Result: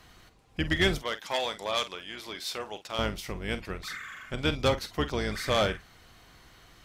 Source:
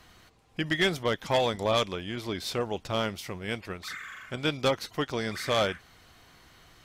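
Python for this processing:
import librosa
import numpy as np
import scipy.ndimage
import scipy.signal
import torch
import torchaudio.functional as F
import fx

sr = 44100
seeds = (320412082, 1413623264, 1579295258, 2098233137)

y = fx.octave_divider(x, sr, octaves=2, level_db=-1.0)
y = fx.highpass(y, sr, hz=1100.0, slope=6, at=(0.98, 2.99))
y = fx.doubler(y, sr, ms=47.0, db=-13.0)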